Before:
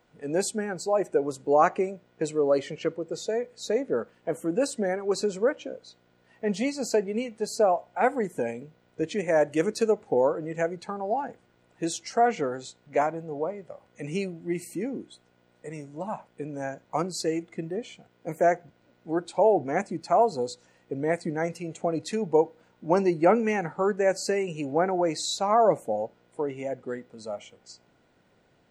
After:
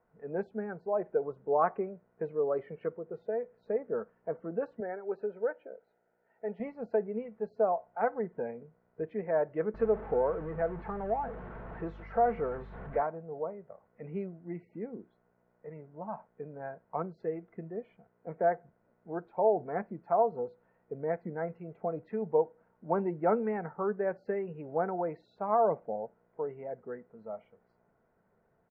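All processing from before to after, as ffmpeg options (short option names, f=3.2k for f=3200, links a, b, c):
-filter_complex "[0:a]asettb=1/sr,asplit=3[a][b][c];[a]atrim=end=4.804[d];[b]atrim=start=4.8:end=6.6,asetpts=PTS-STARTPTS,afade=t=in:d=0.004:c=qsin,afade=t=out:st=1.796:d=0.004:c=qsin,asuperstop=centerf=1100:order=4:qfactor=4.1,bass=f=250:g=-14,treble=f=4k:g=-8[e];[c]atrim=start=6.596[f];[d][e]acrossfade=d=0.004:c1=hsin:c2=qsin[g];[g][f]acrossfade=d=0.004:c1=qsin:c2=hsin,asettb=1/sr,asplit=3[h][i][j];[h]atrim=end=9.744[k];[i]atrim=start=9.74:end=13,asetpts=PTS-STARTPTS,afade=t=in:d=0.004:c=qsin,afade=t=out:st=3.256:d=0.004:c=qsin,aeval=exprs='val(0)+0.5*0.0282*sgn(val(0))':c=same,aeval=exprs='val(0)+0.01*(sin(2*PI*50*n/s)+sin(2*PI*2*50*n/s)/2+sin(2*PI*3*50*n/s)/3+sin(2*PI*4*50*n/s)/4+sin(2*PI*5*50*n/s)/5)':c=same[l];[j]atrim=start=12.996[m];[k][l]acrossfade=d=0.004:c1=hsin:c2=qsin[n];[n][m]acrossfade=d=0.004:c1=qsin:c2=hsin,lowpass=f=1.6k:w=0.5412,lowpass=f=1.6k:w=1.3066,equalizer=f=270:t=o:w=0.32:g=-10,aecho=1:1:4.5:0.31,volume=-6.5dB"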